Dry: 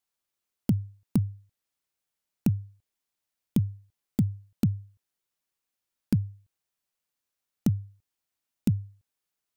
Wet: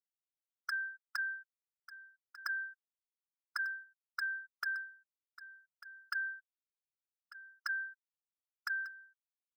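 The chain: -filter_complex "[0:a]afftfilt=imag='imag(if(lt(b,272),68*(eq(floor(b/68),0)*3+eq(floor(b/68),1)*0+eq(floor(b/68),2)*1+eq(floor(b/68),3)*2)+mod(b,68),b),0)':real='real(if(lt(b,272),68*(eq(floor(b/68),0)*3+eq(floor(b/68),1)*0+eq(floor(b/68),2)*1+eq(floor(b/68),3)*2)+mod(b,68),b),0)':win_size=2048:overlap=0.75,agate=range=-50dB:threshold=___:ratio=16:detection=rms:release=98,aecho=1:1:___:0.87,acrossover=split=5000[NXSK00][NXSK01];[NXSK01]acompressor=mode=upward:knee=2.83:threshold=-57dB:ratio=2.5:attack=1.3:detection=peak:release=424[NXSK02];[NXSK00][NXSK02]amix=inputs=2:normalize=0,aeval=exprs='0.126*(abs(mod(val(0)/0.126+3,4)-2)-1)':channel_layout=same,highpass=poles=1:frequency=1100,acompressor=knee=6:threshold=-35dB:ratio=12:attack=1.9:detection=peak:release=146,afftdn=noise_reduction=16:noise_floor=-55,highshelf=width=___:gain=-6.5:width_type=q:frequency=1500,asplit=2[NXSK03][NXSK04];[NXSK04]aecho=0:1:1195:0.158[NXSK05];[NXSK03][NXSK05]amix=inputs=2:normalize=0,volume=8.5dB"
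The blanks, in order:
-51dB, 3.4, 3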